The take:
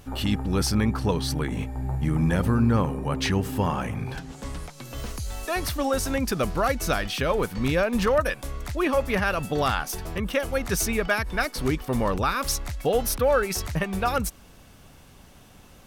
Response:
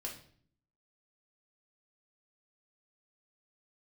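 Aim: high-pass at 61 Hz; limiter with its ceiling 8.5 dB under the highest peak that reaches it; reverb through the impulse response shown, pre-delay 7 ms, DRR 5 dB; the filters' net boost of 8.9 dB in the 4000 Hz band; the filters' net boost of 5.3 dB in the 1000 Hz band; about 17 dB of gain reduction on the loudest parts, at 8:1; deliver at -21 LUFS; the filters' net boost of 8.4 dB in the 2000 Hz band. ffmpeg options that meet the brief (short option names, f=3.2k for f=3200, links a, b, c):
-filter_complex "[0:a]highpass=61,equalizer=f=1k:t=o:g=4,equalizer=f=2k:t=o:g=7.5,equalizer=f=4k:t=o:g=9,acompressor=threshold=-32dB:ratio=8,alimiter=level_in=3dB:limit=-24dB:level=0:latency=1,volume=-3dB,asplit=2[a][b];[1:a]atrim=start_sample=2205,adelay=7[c];[b][c]afir=irnorm=-1:irlink=0,volume=-4dB[d];[a][d]amix=inputs=2:normalize=0,volume=15dB"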